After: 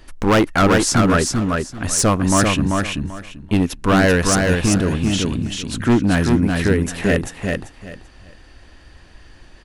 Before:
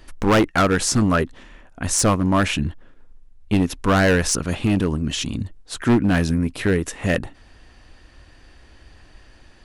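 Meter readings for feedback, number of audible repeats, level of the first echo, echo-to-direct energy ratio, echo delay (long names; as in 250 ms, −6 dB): 22%, 3, −3.5 dB, −3.5 dB, 389 ms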